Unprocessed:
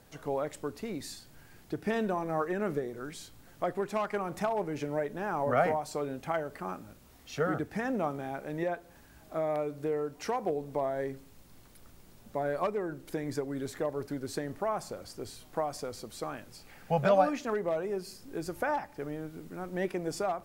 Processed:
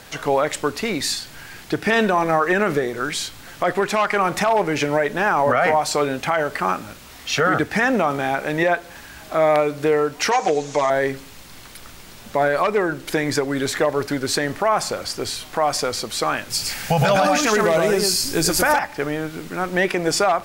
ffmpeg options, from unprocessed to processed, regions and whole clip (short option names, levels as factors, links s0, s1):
-filter_complex "[0:a]asettb=1/sr,asplit=3[s0][s1][s2];[s0]atrim=end=10.314[s3];[s1]atrim=start=10.31:end=10.9,asetpts=PTS-STARTPTS,afade=t=in:d=0.004:c=qsin,afade=t=out:st=0.586:d=0.004:c=qsin,lowpass=f=6600:t=q:w=4.9,lowshelf=f=440:g=-8,aecho=1:1:6.5:0.83,atrim=end_sample=26019[s4];[s2]atrim=start=10.896[s5];[s3][s4]acrossfade=d=0.004:c1=hsin:c2=qsin[s6];[s6][s5]acrossfade=d=0.004:c1=qsin:c2=hsin,asettb=1/sr,asplit=3[s7][s8][s9];[s7]atrim=end=16.504[s10];[s8]atrim=start=16.5:end=18.79,asetpts=PTS-STARTPTS,afade=t=in:d=0.004:c=qsin,afade=t=out:st=2.286:d=0.004:c=qsin,bass=f=250:g=7,treble=f=4000:g=11,aecho=1:1:111:0.631,atrim=end_sample=100989[s11];[s9]atrim=start=18.786[s12];[s10][s11]acrossfade=d=0.004:c1=hsin:c2=qsin[s13];[s13][s12]acrossfade=d=0.004:c1=qsin:c2=hsin,lowpass=f=2800:p=1,tiltshelf=f=1100:g=-8.5,alimiter=level_in=22.4:limit=0.891:release=50:level=0:latency=1,volume=0.422"